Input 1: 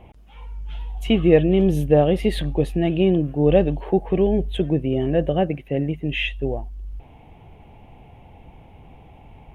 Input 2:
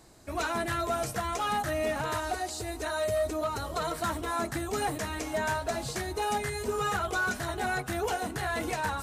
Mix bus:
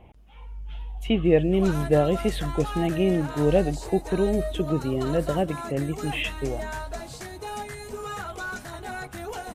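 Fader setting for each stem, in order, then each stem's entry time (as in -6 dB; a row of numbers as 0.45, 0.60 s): -4.5, -4.5 dB; 0.00, 1.25 s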